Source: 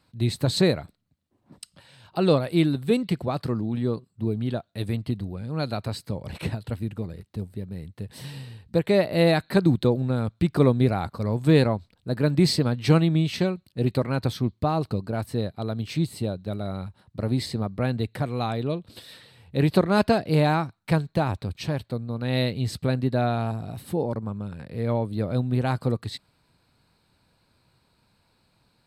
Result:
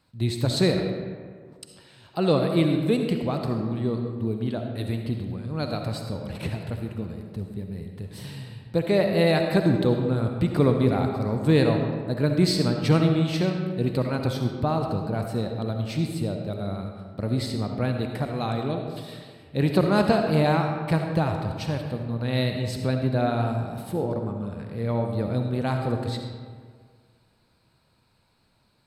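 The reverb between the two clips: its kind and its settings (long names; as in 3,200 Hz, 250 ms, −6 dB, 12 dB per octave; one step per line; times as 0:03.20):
comb and all-pass reverb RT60 1.8 s, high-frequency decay 0.55×, pre-delay 25 ms, DRR 3.5 dB
level −1.5 dB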